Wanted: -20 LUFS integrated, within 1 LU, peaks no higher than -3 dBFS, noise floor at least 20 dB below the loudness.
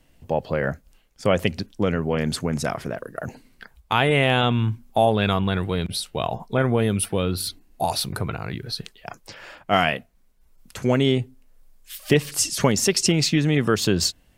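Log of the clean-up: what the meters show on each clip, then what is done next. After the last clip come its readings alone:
loudness -23.0 LUFS; peak level -3.0 dBFS; loudness target -20.0 LUFS
-> trim +3 dB; peak limiter -3 dBFS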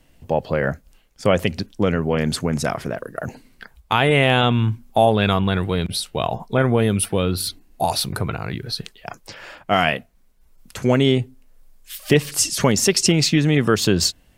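loudness -20.0 LUFS; peak level -3.0 dBFS; noise floor -56 dBFS

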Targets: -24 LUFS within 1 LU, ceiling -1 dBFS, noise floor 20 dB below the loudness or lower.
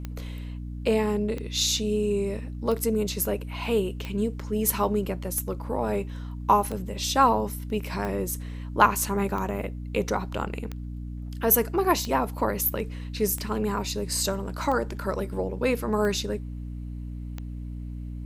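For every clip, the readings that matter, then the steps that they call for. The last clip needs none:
clicks found 14; hum 60 Hz; highest harmonic 300 Hz; hum level -33 dBFS; loudness -26.5 LUFS; peak level -3.5 dBFS; loudness target -24.0 LUFS
-> de-click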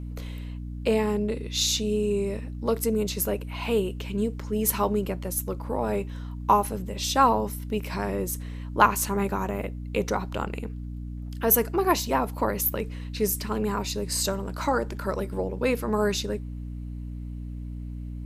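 clicks found 0; hum 60 Hz; highest harmonic 300 Hz; hum level -33 dBFS
-> hum notches 60/120/180/240/300 Hz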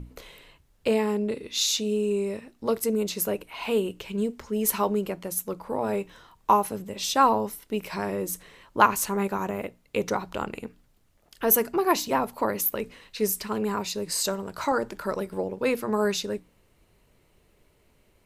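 hum not found; loudness -27.0 LUFS; peak level -3.0 dBFS; loudness target -24.0 LUFS
-> trim +3 dB; peak limiter -1 dBFS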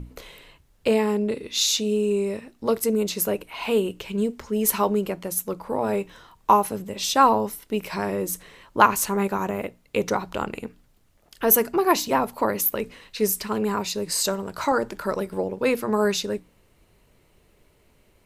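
loudness -24.0 LUFS; peak level -1.0 dBFS; noise floor -61 dBFS

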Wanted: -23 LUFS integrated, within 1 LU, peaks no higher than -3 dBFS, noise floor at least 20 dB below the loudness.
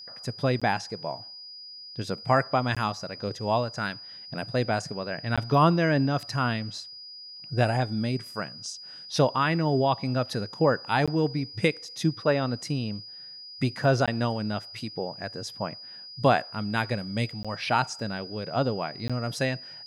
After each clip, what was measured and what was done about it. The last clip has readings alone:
dropouts 7; longest dropout 16 ms; steady tone 4.9 kHz; tone level -41 dBFS; loudness -27.5 LUFS; peak level -8.5 dBFS; loudness target -23.0 LUFS
-> interpolate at 0.60/2.75/5.36/11.06/14.06/17.43/19.08 s, 16 ms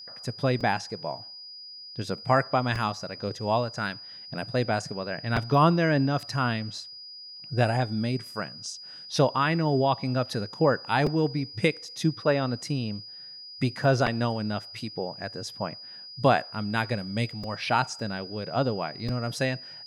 dropouts 0; steady tone 4.9 kHz; tone level -41 dBFS
-> band-stop 4.9 kHz, Q 30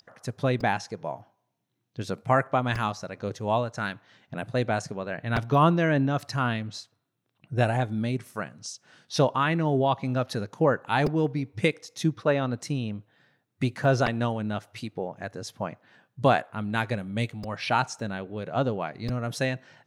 steady tone not found; loudness -27.5 LUFS; peak level -8.5 dBFS; loudness target -23.0 LUFS
-> trim +4.5 dB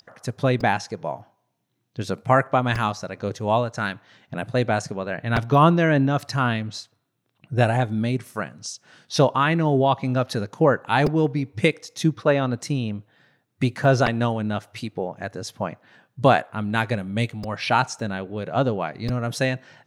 loudness -23.0 LUFS; peak level -4.0 dBFS; noise floor -72 dBFS

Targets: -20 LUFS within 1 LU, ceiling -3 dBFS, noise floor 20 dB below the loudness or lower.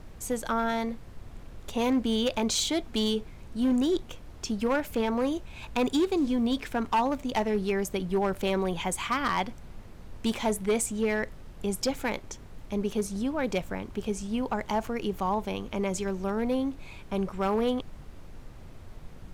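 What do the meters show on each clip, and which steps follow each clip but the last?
clipped samples 1.3%; clipping level -20.0 dBFS; noise floor -46 dBFS; noise floor target -50 dBFS; loudness -29.5 LUFS; peak level -20.0 dBFS; loudness target -20.0 LUFS
-> clip repair -20 dBFS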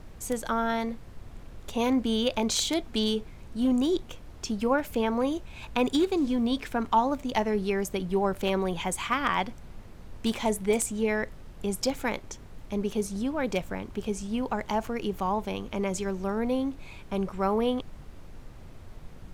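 clipped samples 0.0%; noise floor -46 dBFS; noise floor target -49 dBFS
-> noise print and reduce 6 dB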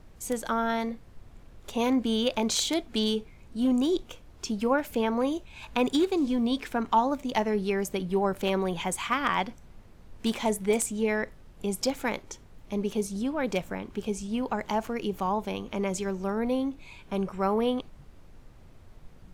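noise floor -52 dBFS; loudness -29.0 LUFS; peak level -11.0 dBFS; loudness target -20.0 LUFS
-> trim +9 dB; peak limiter -3 dBFS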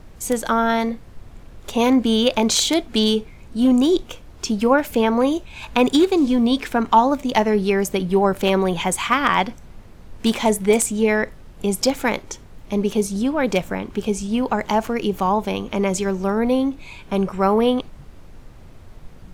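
loudness -20.0 LUFS; peak level -3.0 dBFS; noise floor -43 dBFS

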